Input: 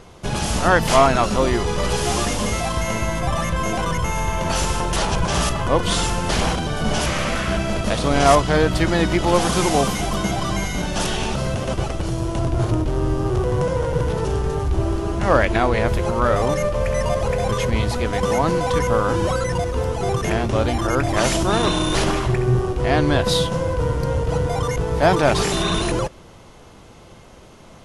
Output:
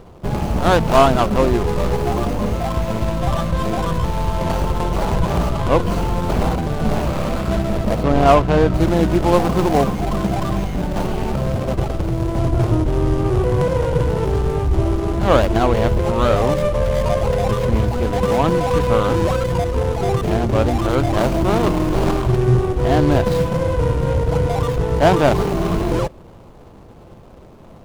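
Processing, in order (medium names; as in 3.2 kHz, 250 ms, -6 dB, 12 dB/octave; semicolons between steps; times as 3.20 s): median filter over 25 samples; 8.03–8.74 s: treble shelf 6.1 kHz -11.5 dB; trim +3.5 dB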